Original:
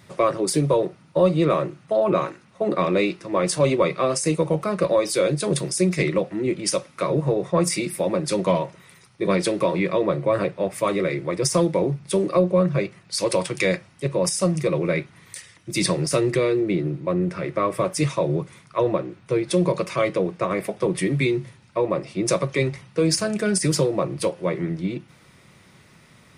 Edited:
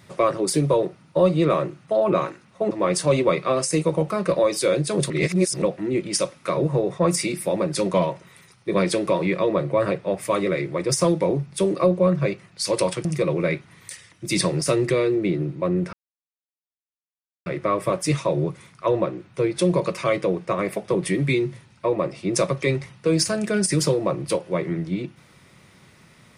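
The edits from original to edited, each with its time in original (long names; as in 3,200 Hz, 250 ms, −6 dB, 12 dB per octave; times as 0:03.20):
0:02.71–0:03.24: remove
0:05.63–0:06.15: reverse
0:13.58–0:14.50: remove
0:17.38: splice in silence 1.53 s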